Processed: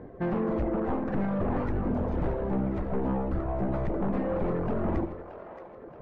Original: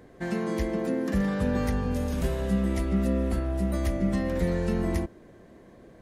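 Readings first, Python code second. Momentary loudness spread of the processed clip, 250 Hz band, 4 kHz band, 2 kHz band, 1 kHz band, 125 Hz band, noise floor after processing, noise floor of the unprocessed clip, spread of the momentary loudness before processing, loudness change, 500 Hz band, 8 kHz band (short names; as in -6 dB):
10 LU, -2.5 dB, under -10 dB, -6.0 dB, +3.5 dB, -3.0 dB, -46 dBFS, -52 dBFS, 3 LU, -2.0 dB, 0.0 dB, under -25 dB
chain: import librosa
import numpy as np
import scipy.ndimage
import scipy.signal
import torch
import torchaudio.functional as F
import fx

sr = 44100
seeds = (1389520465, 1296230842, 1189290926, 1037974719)

p1 = np.minimum(x, 2.0 * 10.0 ** (-28.0 / 20.0) - x)
p2 = scipy.signal.sosfilt(scipy.signal.butter(2, 1100.0, 'lowpass', fs=sr, output='sos'), p1)
p3 = fx.dereverb_blind(p2, sr, rt60_s=2.0)
p4 = fx.rider(p3, sr, range_db=10, speed_s=0.5)
p5 = 10.0 ** (-30.0 / 20.0) * np.tanh(p4 / 10.0 ** (-30.0 / 20.0))
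p6 = p5 + fx.echo_split(p5, sr, split_hz=440.0, low_ms=81, high_ms=626, feedback_pct=52, wet_db=-10.0, dry=0)
y = p6 * 10.0 ** (7.0 / 20.0)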